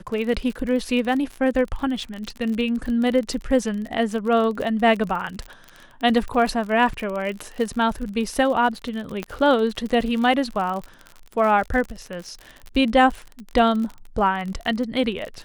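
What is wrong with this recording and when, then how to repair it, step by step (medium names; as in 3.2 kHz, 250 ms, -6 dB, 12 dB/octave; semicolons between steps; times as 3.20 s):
crackle 49 per s -28 dBFS
9.23 s: pop -14 dBFS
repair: de-click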